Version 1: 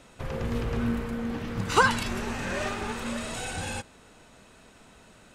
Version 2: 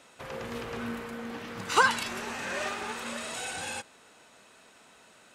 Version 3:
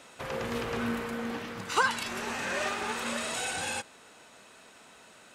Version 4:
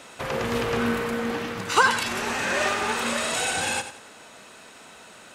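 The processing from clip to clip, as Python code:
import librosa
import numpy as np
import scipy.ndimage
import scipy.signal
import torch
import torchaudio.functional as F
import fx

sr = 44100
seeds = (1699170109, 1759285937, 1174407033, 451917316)

y1 = fx.highpass(x, sr, hz=570.0, slope=6)
y2 = fx.rider(y1, sr, range_db=4, speed_s=0.5)
y3 = fx.echo_feedback(y2, sr, ms=92, feedback_pct=34, wet_db=-11.0)
y3 = y3 * 10.0 ** (7.0 / 20.0)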